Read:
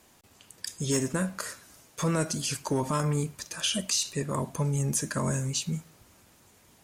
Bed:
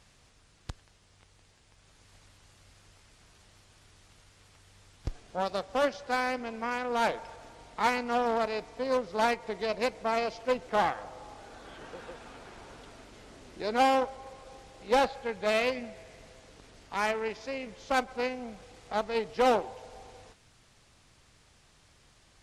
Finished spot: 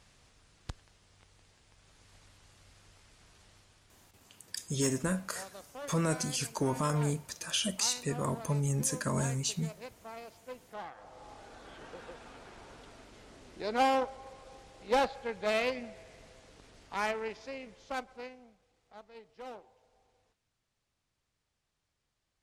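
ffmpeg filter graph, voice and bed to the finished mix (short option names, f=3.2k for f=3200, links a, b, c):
-filter_complex "[0:a]adelay=3900,volume=-3dB[a];[1:a]volume=12.5dB,afade=t=out:st=3.5:d=0.79:silence=0.16788,afade=t=in:st=10.9:d=0.42:silence=0.199526,afade=t=out:st=16.98:d=1.6:silence=0.11885[b];[a][b]amix=inputs=2:normalize=0"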